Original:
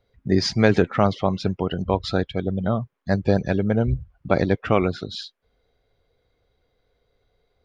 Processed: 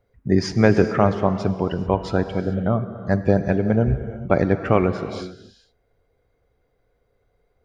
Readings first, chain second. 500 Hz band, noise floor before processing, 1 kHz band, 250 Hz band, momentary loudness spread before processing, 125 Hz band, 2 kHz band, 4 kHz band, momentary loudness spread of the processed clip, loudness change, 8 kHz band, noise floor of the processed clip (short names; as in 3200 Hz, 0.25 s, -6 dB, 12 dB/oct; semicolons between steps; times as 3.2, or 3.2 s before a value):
+2.0 dB, -72 dBFS, +1.5 dB, +2.0 dB, 9 LU, +2.0 dB, 0.0 dB, -6.5 dB, 7 LU, +1.5 dB, n/a, -68 dBFS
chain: bell 3900 Hz -13 dB 0.8 oct; non-linear reverb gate 0.46 s flat, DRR 9.5 dB; gain +1.5 dB